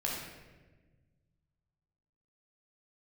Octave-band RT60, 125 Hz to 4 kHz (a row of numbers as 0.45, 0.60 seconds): 2.6, 2.0, 1.5, 1.1, 1.2, 0.85 seconds